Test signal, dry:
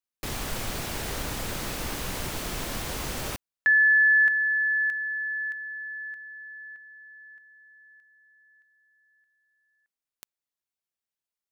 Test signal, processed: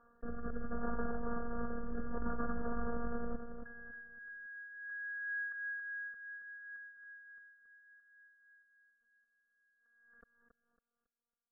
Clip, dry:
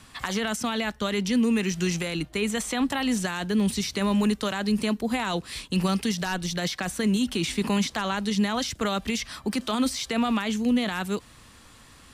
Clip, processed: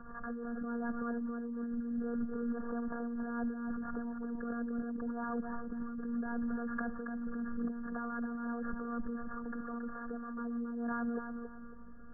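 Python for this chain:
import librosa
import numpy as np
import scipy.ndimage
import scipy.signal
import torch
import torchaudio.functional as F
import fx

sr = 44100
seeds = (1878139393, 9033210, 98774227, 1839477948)

y = np.r_[np.sort(x[:len(x) // 8 * 8].reshape(-1, 8), axis=1).ravel(), x[len(x) // 8 * 8:]]
y = fx.peak_eq(y, sr, hz=680.0, db=-7.5, octaves=0.27)
y = y + 0.51 * np.pad(y, (int(1.6 * sr / 1000.0), 0))[:len(y)]
y = fx.robotise(y, sr, hz=236.0)
y = fx.over_compress(y, sr, threshold_db=-35.0, ratio=-1.0)
y = fx.rotary(y, sr, hz=0.7)
y = fx.brickwall_lowpass(y, sr, high_hz=1800.0)
y = fx.echo_feedback(y, sr, ms=276, feedback_pct=32, wet_db=-7)
y = fx.pre_swell(y, sr, db_per_s=38.0)
y = y * librosa.db_to_amplitude(-2.5)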